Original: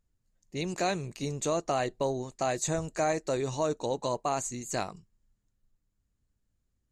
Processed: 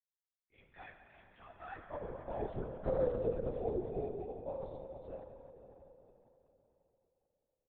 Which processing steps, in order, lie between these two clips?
nonlinear frequency compression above 2100 Hz 1.5:1; Doppler pass-by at 2.54, 50 m/s, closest 7.8 m; low shelf 180 Hz +9 dB; comb 4.8 ms, depth 86%; compressor 6:1, threshold -35 dBFS, peak gain reduction 13 dB; band-pass sweep 2100 Hz -> 540 Hz, 1.43–1.99; varispeed -10%; spring tank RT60 3.9 s, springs 45 ms, chirp 35 ms, DRR 2.5 dB; chorus voices 6, 0.71 Hz, delay 15 ms, depth 4.5 ms; LPC vocoder at 8 kHz whisper; mismatched tape noise reduction decoder only; gain +9 dB

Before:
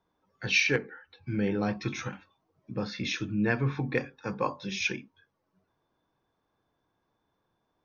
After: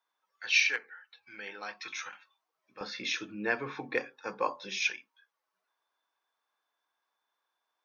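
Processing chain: HPF 1200 Hz 12 dB/oct, from 2.81 s 440 Hz, from 4.9 s 1100 Hz

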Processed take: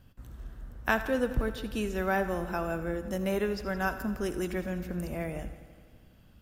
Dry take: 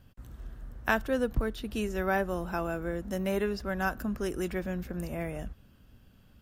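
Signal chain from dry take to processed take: multi-head echo 84 ms, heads first and second, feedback 64%, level -19 dB; on a send at -14 dB: reverb RT60 0.45 s, pre-delay 52 ms

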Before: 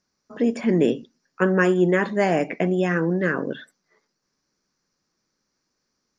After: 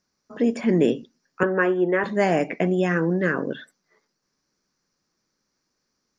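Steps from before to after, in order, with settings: 1.43–2.04 three-band isolator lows -13 dB, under 280 Hz, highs -24 dB, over 2800 Hz

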